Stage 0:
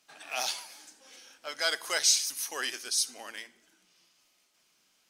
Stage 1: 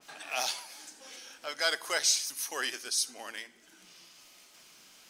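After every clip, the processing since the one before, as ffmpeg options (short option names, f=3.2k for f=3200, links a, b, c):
-filter_complex "[0:a]asplit=2[a][b];[b]acompressor=mode=upward:threshold=-38dB:ratio=2.5,volume=1.5dB[c];[a][c]amix=inputs=2:normalize=0,adynamicequalizer=threshold=0.0178:dfrequency=2000:dqfactor=0.7:tfrequency=2000:tqfactor=0.7:attack=5:release=100:ratio=0.375:range=2.5:mode=cutabove:tftype=highshelf,volume=-6dB"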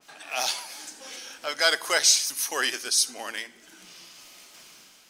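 -af "dynaudnorm=f=170:g=5:m=7.5dB"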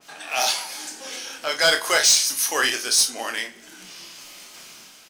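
-af "asoftclip=type=tanh:threshold=-16.5dB,aecho=1:1:26|49:0.473|0.237,volume=5.5dB"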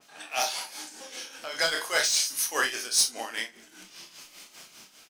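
-filter_complex "[0:a]tremolo=f=5:d=0.68,asplit=2[a][b];[b]adelay=36,volume=-9dB[c];[a][c]amix=inputs=2:normalize=0,volume=-4dB"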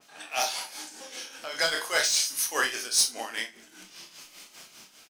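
-af "aecho=1:1:74:0.0841"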